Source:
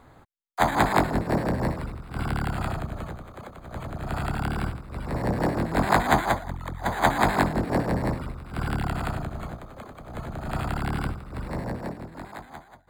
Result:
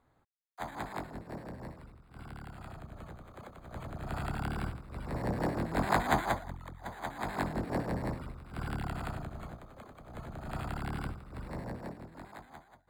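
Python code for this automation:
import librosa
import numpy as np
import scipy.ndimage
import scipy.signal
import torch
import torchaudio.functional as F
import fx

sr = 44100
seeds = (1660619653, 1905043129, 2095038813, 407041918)

y = fx.gain(x, sr, db=fx.line((2.61, -18.5), (3.36, -7.5), (6.42, -7.5), (7.1, -19.0), (7.51, -9.0)))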